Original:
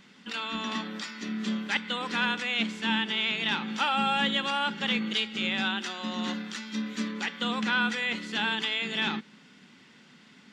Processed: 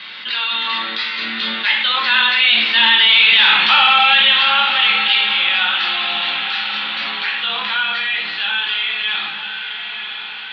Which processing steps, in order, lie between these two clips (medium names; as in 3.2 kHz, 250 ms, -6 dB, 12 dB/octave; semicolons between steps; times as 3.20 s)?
Doppler pass-by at 3.37 s, 11 m/s, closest 3.8 m; bass shelf 430 Hz -11.5 dB; reverberation RT60 0.65 s, pre-delay 5 ms, DRR -1.5 dB; in parallel at -5.5 dB: wavefolder -24.5 dBFS; on the sum: Chebyshev band-pass 110–4300 Hz, order 5; tilt shelf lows -10 dB, about 740 Hz; on a send: echo that smears into a reverb 958 ms, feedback 41%, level -14 dB; on the sum: loudness maximiser +12 dB; level flattener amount 50%; trim -2.5 dB